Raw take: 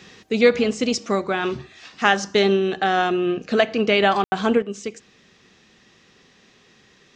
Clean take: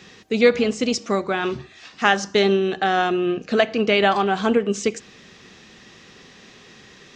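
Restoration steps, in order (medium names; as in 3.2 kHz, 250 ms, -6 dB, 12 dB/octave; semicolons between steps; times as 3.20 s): room tone fill 4.24–4.32 s; gain correction +8 dB, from 4.62 s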